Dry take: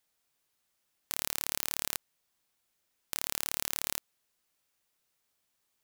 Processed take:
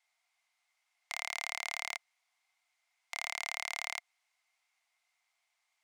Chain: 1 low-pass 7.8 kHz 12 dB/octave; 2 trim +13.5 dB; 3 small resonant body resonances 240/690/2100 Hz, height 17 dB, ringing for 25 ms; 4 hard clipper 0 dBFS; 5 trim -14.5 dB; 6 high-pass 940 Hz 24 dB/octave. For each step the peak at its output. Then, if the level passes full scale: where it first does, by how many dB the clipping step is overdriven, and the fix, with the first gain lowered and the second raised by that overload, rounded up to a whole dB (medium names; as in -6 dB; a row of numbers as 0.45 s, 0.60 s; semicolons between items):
-12.0 dBFS, +1.5 dBFS, +3.5 dBFS, 0.0 dBFS, -14.5 dBFS, -18.0 dBFS; step 2, 3.5 dB; step 2 +9.5 dB, step 5 -10.5 dB